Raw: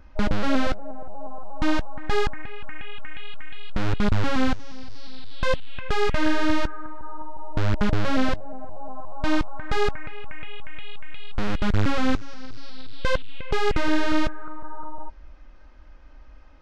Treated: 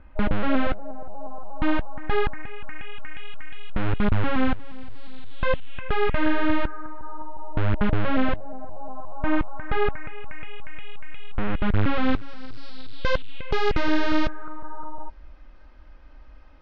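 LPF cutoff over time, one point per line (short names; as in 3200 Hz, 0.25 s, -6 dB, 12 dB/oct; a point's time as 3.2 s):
LPF 24 dB/oct
8.38 s 3100 Hz
8.97 s 1800 Hz
9.46 s 2800 Hz
11.5 s 2800 Hz
12.78 s 5300 Hz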